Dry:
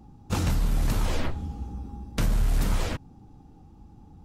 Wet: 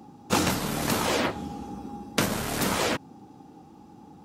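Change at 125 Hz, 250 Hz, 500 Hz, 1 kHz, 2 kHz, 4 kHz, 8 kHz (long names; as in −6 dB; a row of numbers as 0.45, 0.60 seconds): −6.0, +4.5, +8.0, +8.5, +8.5, +8.5, +8.5 decibels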